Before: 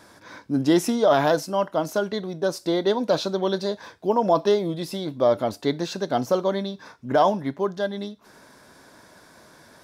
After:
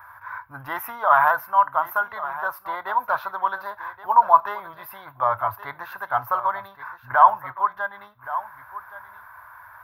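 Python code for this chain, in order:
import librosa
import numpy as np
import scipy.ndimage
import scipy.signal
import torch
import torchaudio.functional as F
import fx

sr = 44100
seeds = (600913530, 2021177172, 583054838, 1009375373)

y = fx.curve_eq(x, sr, hz=(110.0, 170.0, 290.0, 460.0, 1000.0, 1500.0, 4000.0, 8000.0, 13000.0), db=(0, -26, -27, -21, 13, 10, -20, -29, 10))
y = y + 10.0 ** (-14.0 / 20.0) * np.pad(y, (int(1122 * sr / 1000.0), 0))[:len(y)]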